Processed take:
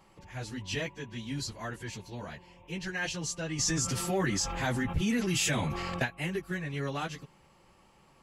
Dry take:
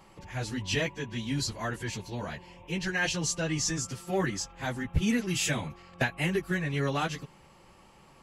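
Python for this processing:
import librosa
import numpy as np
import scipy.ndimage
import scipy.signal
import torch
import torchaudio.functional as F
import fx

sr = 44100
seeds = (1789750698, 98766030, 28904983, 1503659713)

y = fx.env_flatten(x, sr, amount_pct=70, at=(3.58, 6.04), fade=0.02)
y = y * librosa.db_to_amplitude(-5.0)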